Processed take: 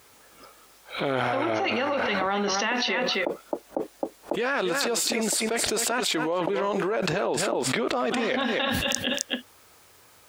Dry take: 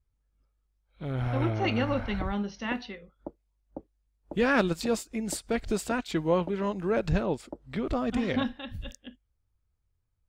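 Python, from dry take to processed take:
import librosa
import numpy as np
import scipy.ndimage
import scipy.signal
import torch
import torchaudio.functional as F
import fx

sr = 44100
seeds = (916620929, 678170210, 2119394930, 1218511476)

y = scipy.signal.sosfilt(scipy.signal.butter(2, 440.0, 'highpass', fs=sr, output='sos'), x)
y = y + 10.0 ** (-15.0 / 20.0) * np.pad(y, (int(264 * sr / 1000.0), 0))[:len(y)]
y = fx.env_flatten(y, sr, amount_pct=100)
y = y * librosa.db_to_amplitude(-2.5)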